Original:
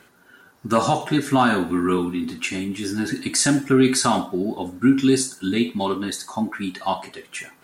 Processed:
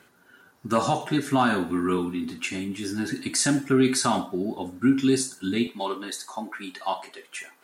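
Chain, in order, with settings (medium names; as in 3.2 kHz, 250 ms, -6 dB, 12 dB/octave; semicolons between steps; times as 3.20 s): high-pass 52 Hz 12 dB/octave, from 5.67 s 360 Hz; trim -4 dB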